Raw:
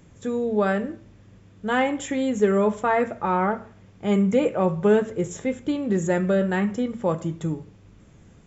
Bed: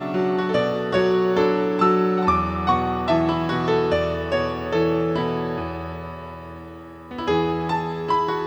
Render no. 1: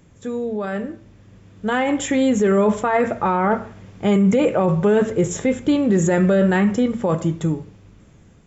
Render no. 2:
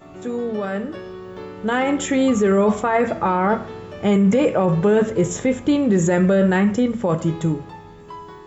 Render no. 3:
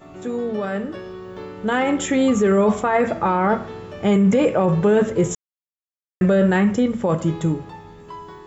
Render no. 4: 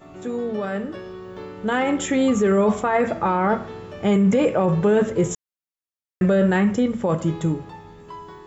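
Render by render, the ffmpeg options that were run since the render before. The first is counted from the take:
ffmpeg -i in.wav -af "alimiter=limit=-18.5dB:level=0:latency=1:release=13,dynaudnorm=framelen=660:gausssize=5:maxgain=9dB" out.wav
ffmpeg -i in.wav -i bed.wav -filter_complex "[1:a]volume=-16dB[link_01];[0:a][link_01]amix=inputs=2:normalize=0" out.wav
ffmpeg -i in.wav -filter_complex "[0:a]asplit=3[link_01][link_02][link_03];[link_01]atrim=end=5.35,asetpts=PTS-STARTPTS,afade=type=out:start_time=5.346:duration=0.004:curve=hsin[link_04];[link_02]atrim=start=5.35:end=6.21,asetpts=PTS-STARTPTS,volume=0[link_05];[link_03]atrim=start=6.21,asetpts=PTS-STARTPTS,afade=type=in:duration=0.004:curve=hsin[link_06];[link_04][link_05][link_06]concat=n=3:v=0:a=1" out.wav
ffmpeg -i in.wav -af "volume=-1.5dB" out.wav

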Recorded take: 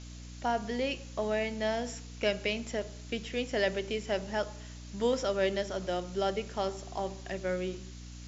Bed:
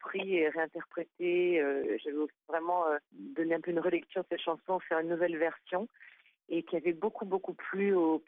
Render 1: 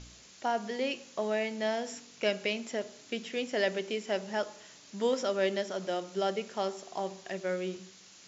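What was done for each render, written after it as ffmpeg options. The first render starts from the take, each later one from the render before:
ffmpeg -i in.wav -af "bandreject=frequency=60:width_type=h:width=4,bandreject=frequency=120:width_type=h:width=4,bandreject=frequency=180:width_type=h:width=4,bandreject=frequency=240:width_type=h:width=4,bandreject=frequency=300:width_type=h:width=4" out.wav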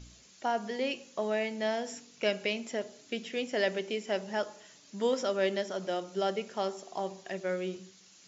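ffmpeg -i in.wav -af "afftdn=noise_reduction=6:noise_floor=-55" out.wav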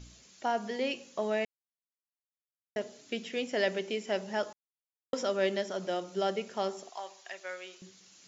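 ffmpeg -i in.wav -filter_complex "[0:a]asettb=1/sr,asplit=3[link_01][link_02][link_03];[link_01]atrim=end=6.894[link_04];[link_02]atrim=start=6.89:end=7.82,asetpts=PTS-STARTPTS,afade=type=in:duration=0.004:curve=qsin,afade=type=out:start_time=0.926:duration=0.004:curve=qsin,highpass=920[link_05];[link_03]atrim=start=7.816[link_06];[link_04][link_05]acrossfade=duration=0.004:curve1=hsin:curve2=qsin[link_07];[link_07][link_06]acrossfade=duration=0.004:curve1=qsin:curve2=hsin,asplit=5[link_08][link_09][link_10][link_11][link_12];[link_08]atrim=end=1.45,asetpts=PTS-STARTPTS,afade=type=out:start_time=1.446:duration=0.004:curve=hsin[link_13];[link_09]atrim=start=1.45:end=2.76,asetpts=PTS-STARTPTS,volume=0[link_14];[link_10]atrim=start=2.76:end=4.53,asetpts=PTS-STARTPTS,afade=type=in:duration=0.004:curve=hsin,afade=type=out:start_time=1.766:duration=0.004:curve=hsin[link_15];[link_11]atrim=start=4.53:end=5.13,asetpts=PTS-STARTPTS,volume=0[link_16];[link_12]atrim=start=5.13,asetpts=PTS-STARTPTS,afade=type=in:duration=0.004:curve=hsin[link_17];[link_13][link_14][link_15][link_16][link_17]concat=n=5:v=0:a=1" out.wav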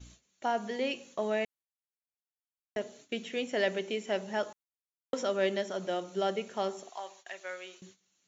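ffmpeg -i in.wav -af "agate=range=-16dB:threshold=-54dB:ratio=16:detection=peak,bandreject=frequency=5000:width=5.8" out.wav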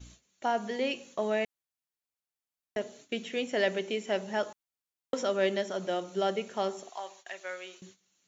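ffmpeg -i in.wav -af "volume=1.5dB" out.wav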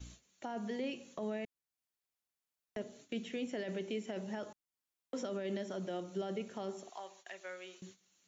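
ffmpeg -i in.wav -filter_complex "[0:a]alimiter=level_in=0.5dB:limit=-24dB:level=0:latency=1:release=12,volume=-0.5dB,acrossover=split=330[link_01][link_02];[link_02]acompressor=threshold=-58dB:ratio=1.5[link_03];[link_01][link_03]amix=inputs=2:normalize=0" out.wav

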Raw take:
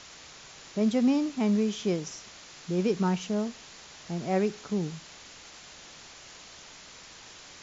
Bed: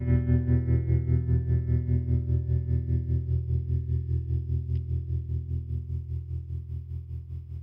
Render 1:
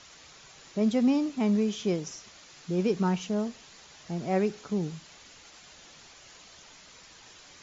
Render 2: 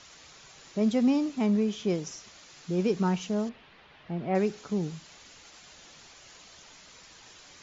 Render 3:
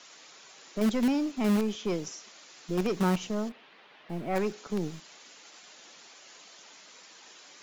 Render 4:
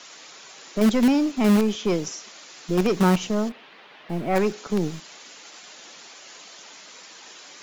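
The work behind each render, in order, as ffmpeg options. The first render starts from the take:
ffmpeg -i in.wav -af "afftdn=noise_reduction=6:noise_floor=-49" out.wav
ffmpeg -i in.wav -filter_complex "[0:a]asettb=1/sr,asplit=3[link_01][link_02][link_03];[link_01]atrim=end=1.464[link_04];[link_02]atrim=start=1.46:end=1.9,asetpts=PTS-STARTPTS,afade=type=in:duration=0.004:curve=qsin,afade=type=out:start_time=0.436:duration=0.004:curve=qsin,highshelf=frequency=4600:gain=-6.5[link_05];[link_03]atrim=start=1.896[link_06];[link_04][link_05]acrossfade=duration=0.004:curve1=hsin:curve2=qsin[link_07];[link_07][link_06]acrossfade=duration=0.004:curve1=qsin:curve2=hsin,asettb=1/sr,asplit=3[link_08][link_09][link_10];[link_08]atrim=end=3.494[link_11];[link_09]atrim=start=3.49:end=4.35,asetpts=PTS-STARTPTS,afade=type=in:duration=0.004:curve=qsin,afade=type=out:start_time=0.856:duration=0.004:curve=qsin,lowpass=frequency=3200:width=0.5412,lowpass=frequency=3200:width=1.3066[link_12];[link_10]atrim=start=4.346[link_13];[link_11][link_12]acrossfade=duration=0.004:curve1=hsin:curve2=qsin[link_14];[link_14][link_13]acrossfade=duration=0.004:curve1=qsin:curve2=hsin" out.wav
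ffmpeg -i in.wav -filter_complex "[0:a]acrossover=split=200|890|1500[link_01][link_02][link_03][link_04];[link_01]acrusher=bits=6:dc=4:mix=0:aa=0.000001[link_05];[link_02]asoftclip=type=hard:threshold=-26dB[link_06];[link_05][link_06][link_03][link_04]amix=inputs=4:normalize=0" out.wav
ffmpeg -i in.wav -af "volume=7.5dB" out.wav

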